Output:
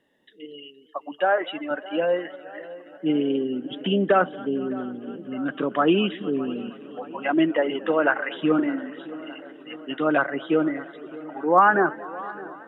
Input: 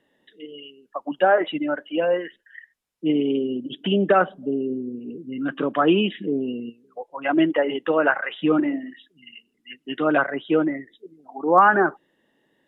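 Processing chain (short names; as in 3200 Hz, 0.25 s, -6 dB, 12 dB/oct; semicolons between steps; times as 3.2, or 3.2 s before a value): 0.98–1.71 HPF 560 Hz 6 dB/oct; on a send: tape echo 0.613 s, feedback 74%, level -17.5 dB, low-pass 2200 Hz; on the sum: warbling echo 0.232 s, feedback 76%, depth 119 cents, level -21.5 dB; gain -1.5 dB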